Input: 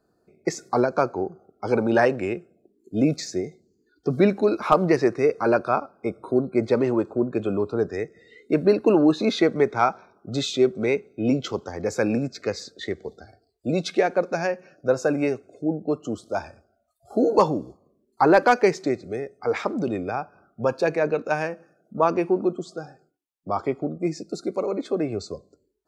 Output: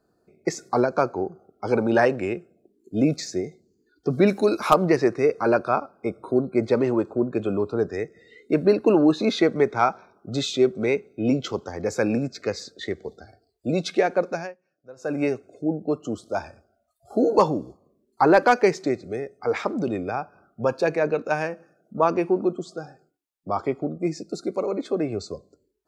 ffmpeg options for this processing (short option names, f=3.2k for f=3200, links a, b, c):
-filter_complex "[0:a]asplit=3[a][b][c];[a]afade=t=out:st=4.26:d=0.02[d];[b]aemphasis=mode=production:type=75kf,afade=t=in:st=4.26:d=0.02,afade=t=out:st=4.73:d=0.02[e];[c]afade=t=in:st=4.73:d=0.02[f];[d][e][f]amix=inputs=3:normalize=0,asplit=3[g][h][i];[g]atrim=end=14.54,asetpts=PTS-STARTPTS,afade=t=out:st=14.28:d=0.26:silence=0.0707946[j];[h]atrim=start=14.54:end=14.96,asetpts=PTS-STARTPTS,volume=-23dB[k];[i]atrim=start=14.96,asetpts=PTS-STARTPTS,afade=t=in:d=0.26:silence=0.0707946[l];[j][k][l]concat=n=3:v=0:a=1"